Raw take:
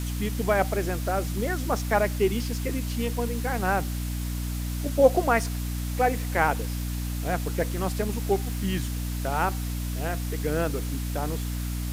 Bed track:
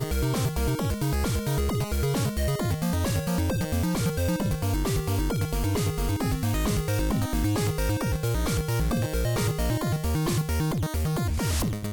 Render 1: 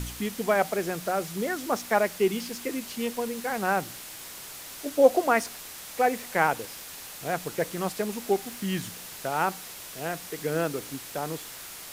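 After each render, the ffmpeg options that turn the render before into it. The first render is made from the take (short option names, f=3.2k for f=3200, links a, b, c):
-af "bandreject=f=60:t=h:w=4,bandreject=f=120:t=h:w=4,bandreject=f=180:t=h:w=4,bandreject=f=240:t=h:w=4,bandreject=f=300:t=h:w=4"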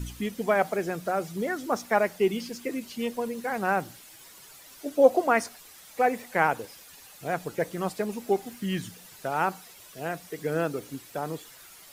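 -af "afftdn=nr=11:nf=-42"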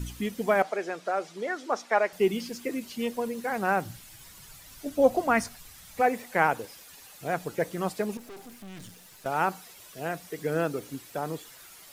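-filter_complex "[0:a]asettb=1/sr,asplit=3[a][b][c];[a]atrim=end=0.624[d];[b]atrim=start=0.62:end=2.13,asetpts=PTS-STARTPTS,afade=t=in:d=0.004:c=qsin,afade=t=out:st=1.506:d=0.004:c=qsin,highpass=400,lowpass=6.1k[e];[c]atrim=start=2.126[f];[d][e]acrossfade=d=0.004:c1=hsin:c2=qsin[g];[g][f]acrossfade=d=0.004:c1=qsin:c2=hsin,asplit=3[h][i][j];[h]afade=t=out:st=3.85:d=0.02[k];[i]asubboost=boost=7.5:cutoff=140,afade=t=in:st=3.85:d=0.02,afade=t=out:st=6:d=0.02[l];[j]afade=t=in:st=6:d=0.02[m];[k][l][m]amix=inputs=3:normalize=0,asettb=1/sr,asplit=3[n][o][p];[n]atrim=end=8.174[q];[o]atrim=start=8.17:end=9.26,asetpts=PTS-STARTPTS,afade=t=in:d=0.004:c=qsin,afade=t=out:st=1.086:d=0.004:c=qsin,aeval=exprs='(tanh(126*val(0)+0.6)-tanh(0.6))/126':c=same[r];[p]atrim=start=9.256[s];[q][r]acrossfade=d=0.004:c1=hsin:c2=qsin[t];[t][s]acrossfade=d=0.004:c1=qsin:c2=hsin"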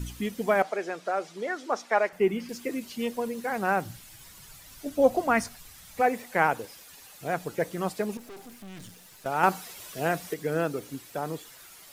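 -filter_complex "[0:a]asettb=1/sr,asplit=3[a][b][c];[a]atrim=end=2.094[d];[b]atrim=start=2.09:end=2.49,asetpts=PTS-STARTPTS,afade=t=in:d=0.004:c=qsin,afade=t=out:st=0.396:d=0.004:c=qsin,highshelf=f=2.8k:t=q:w=1.5:g=-8[e];[c]atrim=start=2.486[f];[d][e]acrossfade=d=0.004:c1=hsin:c2=qsin[g];[g][f]acrossfade=d=0.004:c1=qsin:c2=hsin,asettb=1/sr,asplit=3[h][i][j];[h]atrim=end=9.434[k];[i]atrim=start=9.43:end=10.34,asetpts=PTS-STARTPTS,afade=t=in:d=0.004:c=qsin,afade=t=out:st=0.906:d=0.004:c=qsin,acontrast=43[l];[j]atrim=start=10.336[m];[k][l]acrossfade=d=0.004:c1=hsin:c2=qsin[n];[n][m]acrossfade=d=0.004:c1=qsin:c2=hsin"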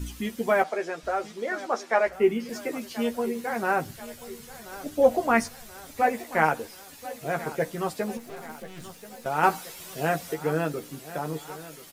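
-filter_complex "[0:a]asplit=2[a][b];[b]adelay=13,volume=-5dB[c];[a][c]amix=inputs=2:normalize=0,aecho=1:1:1033|2066|3099|4132|5165:0.15|0.0808|0.0436|0.0236|0.0127"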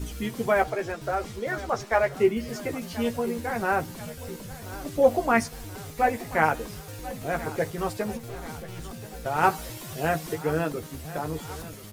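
-filter_complex "[1:a]volume=-15dB[a];[0:a][a]amix=inputs=2:normalize=0"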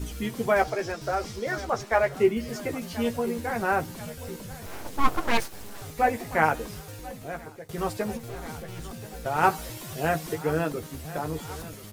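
-filter_complex "[0:a]asettb=1/sr,asplit=3[a][b][c];[a]atrim=end=0.564[d];[b]atrim=start=0.56:end=1.65,asetpts=PTS-STARTPTS,afade=t=in:d=0.004:c=qsin,afade=t=out:st=1.086:d=0.004:c=qsin,equalizer=f=5.3k:t=o:w=0.58:g=8[e];[c]atrim=start=1.646[f];[d][e]acrossfade=d=0.004:c1=hsin:c2=qsin[g];[g][f]acrossfade=d=0.004:c1=qsin:c2=hsin,asettb=1/sr,asplit=3[h][i][j];[h]atrim=end=4.664[k];[i]atrim=start=4.66:end=5.82,asetpts=PTS-STARTPTS,afade=t=in:d=0.004:c=qsin,afade=t=out:st=1.156:d=0.004:c=qsin,aeval=exprs='abs(val(0))':c=same[l];[j]atrim=start=5.816[m];[k][l]acrossfade=d=0.004:c1=hsin:c2=qsin[n];[n][m]acrossfade=d=0.004:c1=qsin:c2=hsin,asplit=2[o][p];[o]atrim=end=7.69,asetpts=PTS-STARTPTS,afade=t=out:st=6.78:d=0.91:silence=0.0794328[q];[p]atrim=start=7.69,asetpts=PTS-STARTPTS,afade=t=in:d=0.004:c=hsin:silence=0.0794328[r];[q][r]concat=n=2:v=0:a=1"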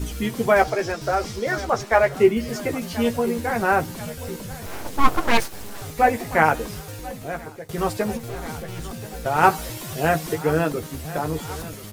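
-af "volume=5.5dB,alimiter=limit=-2dB:level=0:latency=1"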